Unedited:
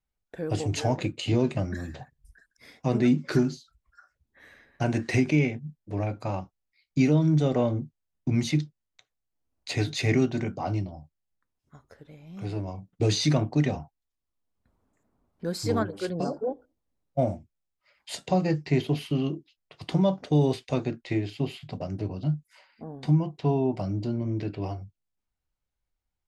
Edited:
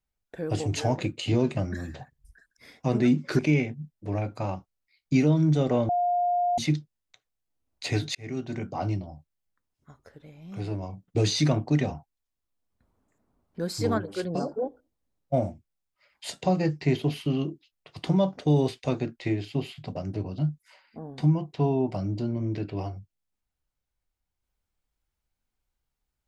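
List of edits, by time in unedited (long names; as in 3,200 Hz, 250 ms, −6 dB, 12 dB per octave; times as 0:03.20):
0:03.39–0:05.24: remove
0:07.74–0:08.43: beep over 708 Hz −21.5 dBFS
0:10.00–0:10.64: fade in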